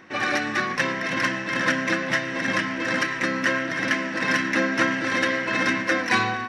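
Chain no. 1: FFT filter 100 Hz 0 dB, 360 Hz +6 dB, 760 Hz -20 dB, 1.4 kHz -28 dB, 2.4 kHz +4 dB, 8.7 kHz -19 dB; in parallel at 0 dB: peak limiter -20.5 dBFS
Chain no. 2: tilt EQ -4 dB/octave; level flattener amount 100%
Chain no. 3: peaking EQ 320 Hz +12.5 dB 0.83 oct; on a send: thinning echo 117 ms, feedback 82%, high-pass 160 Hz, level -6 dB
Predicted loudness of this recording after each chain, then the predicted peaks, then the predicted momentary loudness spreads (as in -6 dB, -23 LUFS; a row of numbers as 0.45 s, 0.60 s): -20.5 LUFS, -15.5 LUFS, -18.0 LUFS; -7.5 dBFS, -4.0 dBFS, -2.5 dBFS; 3 LU, 0 LU, 5 LU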